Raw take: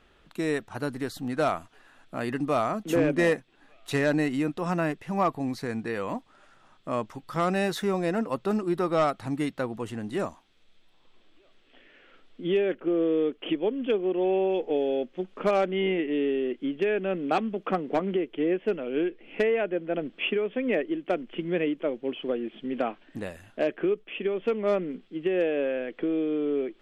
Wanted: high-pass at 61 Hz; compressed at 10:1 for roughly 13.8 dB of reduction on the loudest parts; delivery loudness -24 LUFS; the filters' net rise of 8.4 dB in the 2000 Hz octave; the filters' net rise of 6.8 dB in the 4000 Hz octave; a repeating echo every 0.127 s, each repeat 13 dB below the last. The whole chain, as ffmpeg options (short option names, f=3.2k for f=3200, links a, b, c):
-af "highpass=61,equalizer=f=2k:t=o:g=9,equalizer=f=4k:t=o:g=5,acompressor=threshold=-31dB:ratio=10,aecho=1:1:127|254|381:0.224|0.0493|0.0108,volume=11.5dB"